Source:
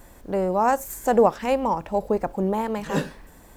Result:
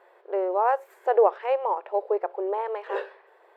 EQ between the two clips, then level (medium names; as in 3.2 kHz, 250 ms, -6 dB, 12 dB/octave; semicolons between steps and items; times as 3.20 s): brick-wall FIR high-pass 350 Hz; distance through air 460 m; 0.0 dB